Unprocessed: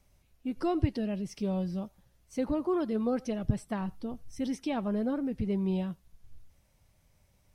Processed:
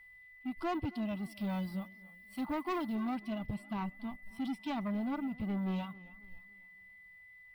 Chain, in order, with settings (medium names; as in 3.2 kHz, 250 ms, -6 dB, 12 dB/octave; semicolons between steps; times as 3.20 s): companding laws mixed up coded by A; reverb removal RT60 0.61 s; treble shelf 5.9 kHz -3 dB, from 1.24 s +6.5 dB, from 2.95 s -4 dB; harmonic-percussive split harmonic +9 dB; bass shelf 380 Hz -9 dB; static phaser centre 1.8 kHz, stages 6; saturation -33 dBFS, distortion -12 dB; whistle 2 kHz -56 dBFS; modulated delay 273 ms, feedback 42%, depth 102 cents, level -21 dB; trim +2 dB